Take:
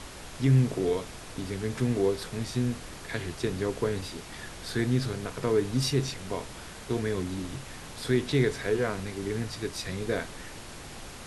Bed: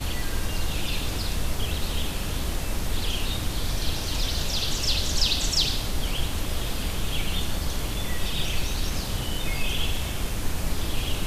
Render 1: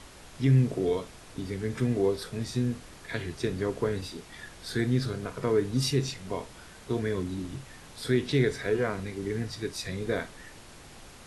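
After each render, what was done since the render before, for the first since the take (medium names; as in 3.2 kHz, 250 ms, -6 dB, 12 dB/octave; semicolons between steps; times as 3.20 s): noise print and reduce 6 dB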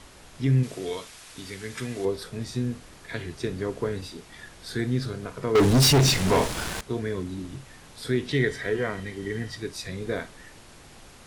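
0.63–2.05 s: tilt shelf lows -7.5 dB; 5.55–6.81 s: waveshaping leveller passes 5; 8.31–9.57 s: small resonant body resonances 1.9/3.1 kHz, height 16 dB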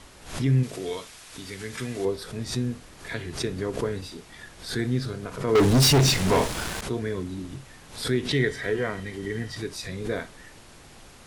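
swell ahead of each attack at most 110 dB/s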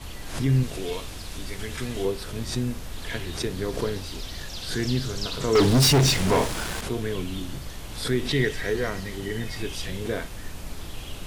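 add bed -9.5 dB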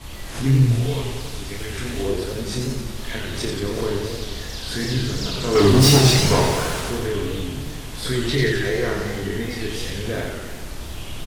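doubling 30 ms -3 dB; modulated delay 90 ms, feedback 68%, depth 162 cents, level -4 dB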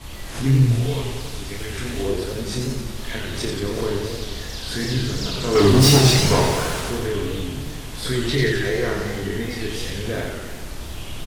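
no audible change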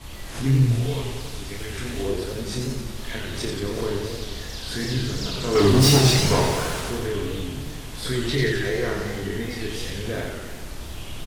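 trim -2.5 dB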